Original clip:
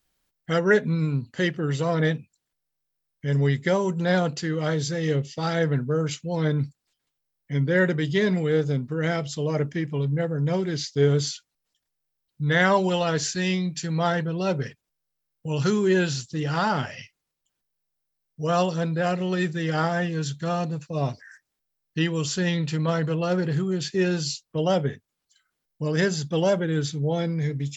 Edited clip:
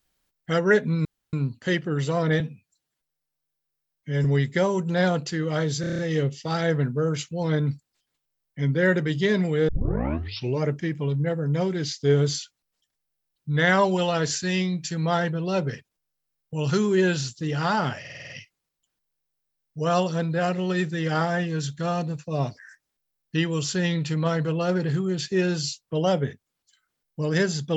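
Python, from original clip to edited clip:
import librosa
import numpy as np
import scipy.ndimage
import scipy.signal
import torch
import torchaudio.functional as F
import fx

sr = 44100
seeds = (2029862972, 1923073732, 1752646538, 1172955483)

y = fx.edit(x, sr, fx.insert_room_tone(at_s=1.05, length_s=0.28),
    fx.stretch_span(start_s=2.12, length_s=1.23, factor=1.5),
    fx.stutter(start_s=4.91, slice_s=0.03, count=7),
    fx.tape_start(start_s=8.61, length_s=0.94),
    fx.stutter(start_s=16.92, slice_s=0.05, count=7), tone=tone)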